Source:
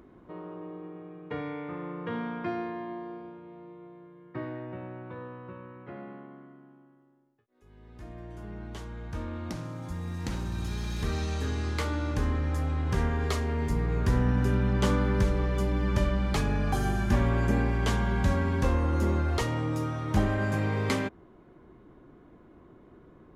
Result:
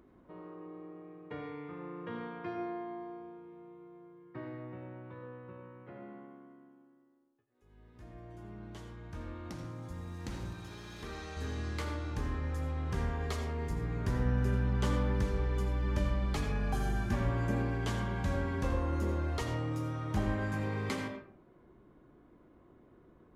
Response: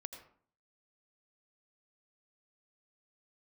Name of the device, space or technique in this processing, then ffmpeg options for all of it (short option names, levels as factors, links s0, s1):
bathroom: -filter_complex "[0:a]asettb=1/sr,asplit=3[s0][s1][s2];[s0]atrim=end=10.534[s3];[s1]atrim=start=10.53:end=11.37,asetpts=PTS-STARTPTS,afade=t=in:d=0.004:c=qsin,afade=t=out:st=0.836:d=0.004:c=qsin,bass=f=250:g=-10,treble=f=4000:g=-4[s4];[s2]atrim=start=11.366[s5];[s3][s4]acrossfade=d=0.004:c1=hsin:c2=qsin[s6];[s6][s5]acrossfade=d=0.004:c1=qsin:c2=hsin[s7];[1:a]atrim=start_sample=2205[s8];[s7][s8]afir=irnorm=-1:irlink=0,volume=0.708"